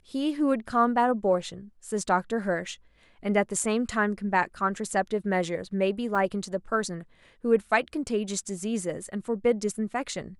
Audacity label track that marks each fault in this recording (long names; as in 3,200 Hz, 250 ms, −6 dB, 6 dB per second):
6.150000	6.150000	drop-out 2.3 ms